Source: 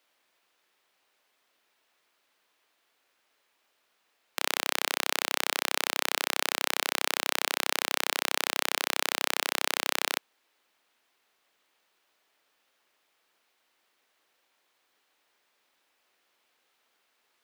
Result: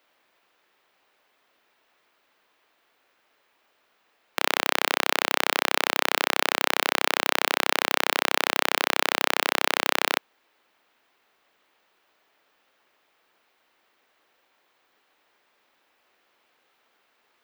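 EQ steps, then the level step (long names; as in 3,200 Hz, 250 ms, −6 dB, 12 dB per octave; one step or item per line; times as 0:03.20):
parametric band 9,200 Hz −9.5 dB 2.3 octaves
+8.0 dB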